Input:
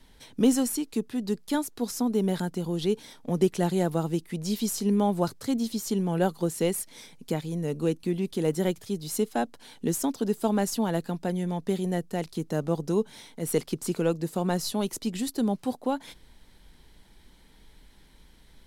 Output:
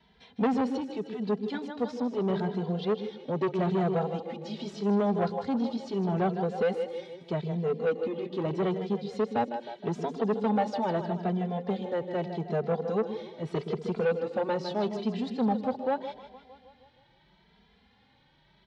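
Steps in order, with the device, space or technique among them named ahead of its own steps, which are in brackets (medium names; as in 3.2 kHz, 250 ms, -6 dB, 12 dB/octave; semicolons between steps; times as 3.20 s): dynamic bell 460 Hz, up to +8 dB, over -39 dBFS, Q 1; two-band feedback delay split 380 Hz, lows 119 ms, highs 156 ms, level -9.5 dB; barber-pole flanger into a guitar amplifier (endless flanger 2.6 ms +0.8 Hz; saturation -21 dBFS, distortion -10 dB; cabinet simulation 92–4100 Hz, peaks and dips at 210 Hz +3 dB, 310 Hz -9 dB, 790 Hz +5 dB)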